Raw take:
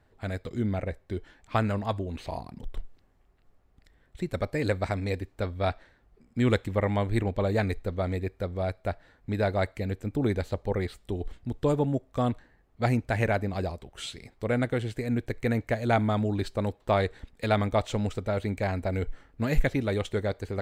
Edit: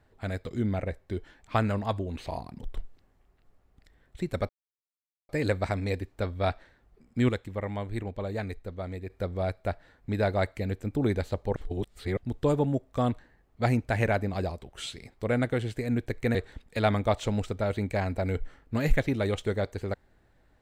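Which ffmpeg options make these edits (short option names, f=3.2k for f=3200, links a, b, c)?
-filter_complex "[0:a]asplit=7[a][b][c][d][e][f][g];[a]atrim=end=4.49,asetpts=PTS-STARTPTS,afade=t=out:st=4.486:d=0.004:c=hsin,apad=pad_dur=0.8[h];[b]atrim=start=4.49:end=6.492,asetpts=PTS-STARTPTS,afade=t=in:d=0.004:c=hsin[i];[c]atrim=start=6.488:end=8.302,asetpts=PTS-STARTPTS,volume=-7dB[j];[d]atrim=start=8.298:end=10.762[k];[e]atrim=start=10.758:end=11.372,asetpts=PTS-STARTPTS,areverse[l];[f]atrim=start=11.368:end=15.552[m];[g]atrim=start=17.018[n];[h][i]concat=n=2:v=0:a=1[o];[o][j]acrossfade=d=0.004:c1=hsin:c2=hsin[p];[p][k]acrossfade=d=0.004:c1=hsin:c2=hsin[q];[q][l]acrossfade=d=0.004:c1=hsin:c2=hsin[r];[r][m]acrossfade=d=0.004:c1=hsin:c2=hsin[s];[s][n]acrossfade=d=0.004:c1=hsin:c2=hsin"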